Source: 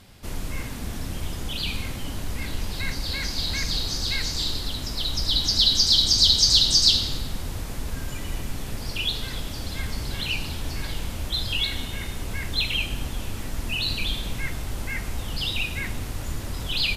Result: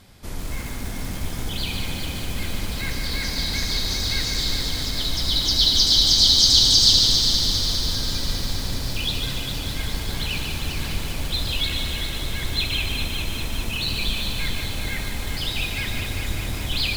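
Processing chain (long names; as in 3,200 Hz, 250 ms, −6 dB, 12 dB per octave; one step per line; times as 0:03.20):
notch filter 2,800 Hz, Q 15
echo machine with several playback heads 201 ms, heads first and second, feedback 70%, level −9.5 dB
feedback echo at a low word length 146 ms, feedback 55%, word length 6 bits, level −5 dB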